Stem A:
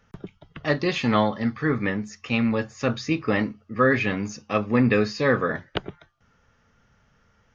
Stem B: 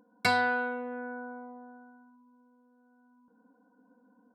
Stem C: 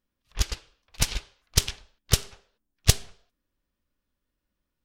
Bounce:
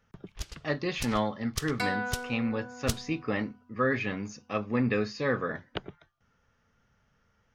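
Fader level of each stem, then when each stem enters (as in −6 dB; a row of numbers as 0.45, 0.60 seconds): −7.5, −5.5, −12.5 decibels; 0.00, 1.55, 0.00 seconds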